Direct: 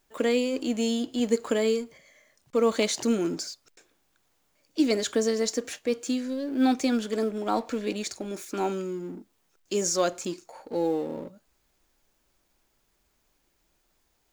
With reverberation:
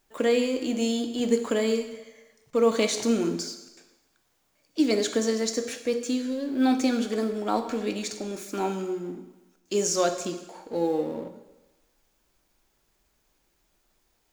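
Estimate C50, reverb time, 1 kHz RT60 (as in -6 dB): 9.5 dB, 1.1 s, 1.2 s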